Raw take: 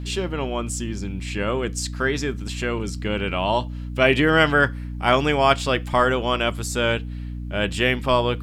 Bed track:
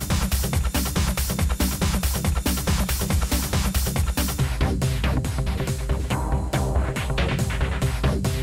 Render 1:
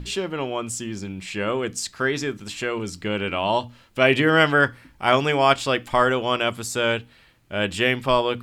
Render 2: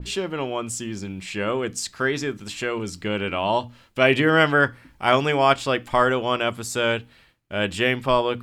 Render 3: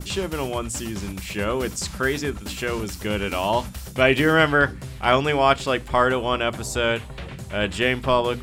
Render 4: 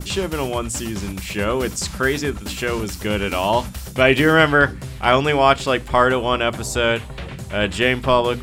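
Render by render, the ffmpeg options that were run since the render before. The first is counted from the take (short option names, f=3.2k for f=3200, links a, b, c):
-af "bandreject=f=60:t=h:w=6,bandreject=f=120:t=h:w=6,bandreject=f=180:t=h:w=6,bandreject=f=240:t=h:w=6,bandreject=f=300:t=h:w=6"
-af "agate=range=-33dB:threshold=-50dB:ratio=3:detection=peak,adynamicequalizer=threshold=0.0224:dfrequency=2200:dqfactor=0.7:tfrequency=2200:tqfactor=0.7:attack=5:release=100:ratio=0.375:range=2:mode=cutabove:tftype=highshelf"
-filter_complex "[1:a]volume=-12.5dB[a];[0:a][a]amix=inputs=2:normalize=0"
-af "volume=3.5dB,alimiter=limit=-1dB:level=0:latency=1"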